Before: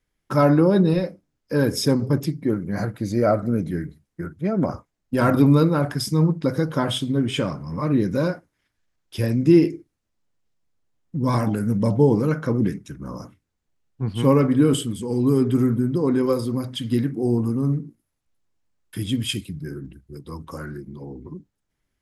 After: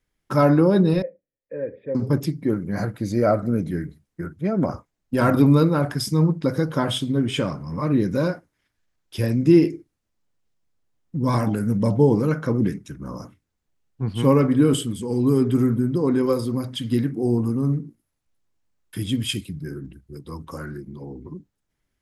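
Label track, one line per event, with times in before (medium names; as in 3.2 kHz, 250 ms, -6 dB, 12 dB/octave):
1.020000	1.950000	cascade formant filter e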